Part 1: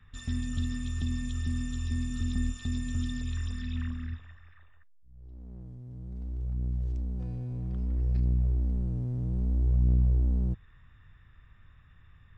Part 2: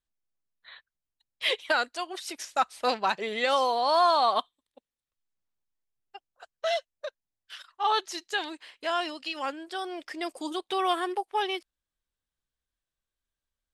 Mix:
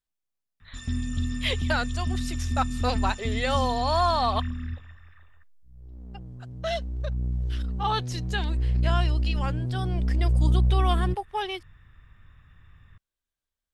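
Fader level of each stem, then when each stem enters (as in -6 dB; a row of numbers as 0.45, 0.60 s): +3.0, -1.5 dB; 0.60, 0.00 s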